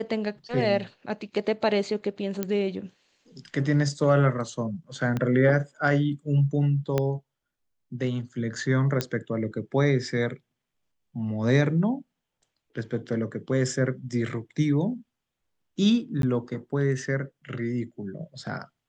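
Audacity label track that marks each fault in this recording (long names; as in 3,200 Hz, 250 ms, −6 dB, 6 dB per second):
2.430000	2.430000	click −14 dBFS
5.170000	5.170000	click −16 dBFS
6.980000	6.980000	click −11 dBFS
9.010000	9.010000	click −11 dBFS
16.220000	16.230000	drop-out 12 ms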